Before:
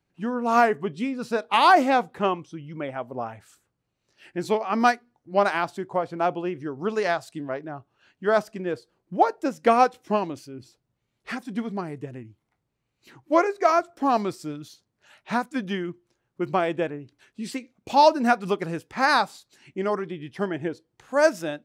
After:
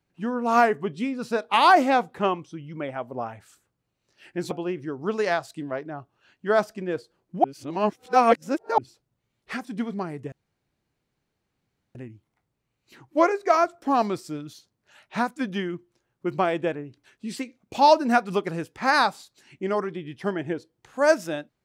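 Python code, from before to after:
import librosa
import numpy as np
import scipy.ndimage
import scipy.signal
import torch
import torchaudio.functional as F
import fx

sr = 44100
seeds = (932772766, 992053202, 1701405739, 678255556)

y = fx.edit(x, sr, fx.cut(start_s=4.51, length_s=1.78),
    fx.reverse_span(start_s=9.22, length_s=1.34),
    fx.insert_room_tone(at_s=12.1, length_s=1.63), tone=tone)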